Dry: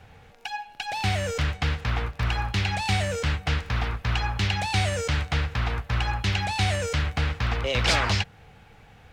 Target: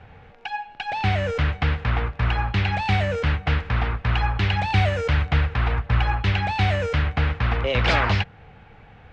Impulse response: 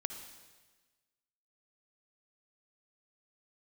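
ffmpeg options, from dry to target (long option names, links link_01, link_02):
-filter_complex "[0:a]lowpass=2700,asplit=3[link_01][link_02][link_03];[link_01]afade=type=out:start_time=4.18:duration=0.02[link_04];[link_02]aphaser=in_gain=1:out_gain=1:delay=3:decay=0.24:speed=1.7:type=triangular,afade=type=in:start_time=4.18:duration=0.02,afade=type=out:start_time=6.31:duration=0.02[link_05];[link_03]afade=type=in:start_time=6.31:duration=0.02[link_06];[link_04][link_05][link_06]amix=inputs=3:normalize=0,volume=4dB"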